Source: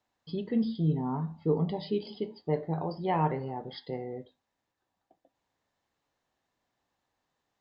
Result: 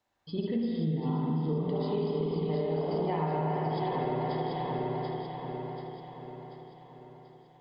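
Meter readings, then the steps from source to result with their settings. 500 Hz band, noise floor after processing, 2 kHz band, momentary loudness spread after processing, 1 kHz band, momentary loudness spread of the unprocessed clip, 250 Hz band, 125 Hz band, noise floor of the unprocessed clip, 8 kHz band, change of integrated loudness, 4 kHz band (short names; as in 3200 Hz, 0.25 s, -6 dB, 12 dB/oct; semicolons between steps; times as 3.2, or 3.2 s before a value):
+3.0 dB, -57 dBFS, +2.5 dB, 15 LU, +2.5 dB, 10 LU, +1.0 dB, +1.5 dB, -84 dBFS, n/a, +0.5 dB, +0.5 dB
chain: regenerating reverse delay 0.368 s, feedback 69%, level -4 dB; spring tank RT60 2.9 s, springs 51/56 ms, chirp 30 ms, DRR -3.5 dB; compressor 6:1, threshold -27 dBFS, peak gain reduction 10 dB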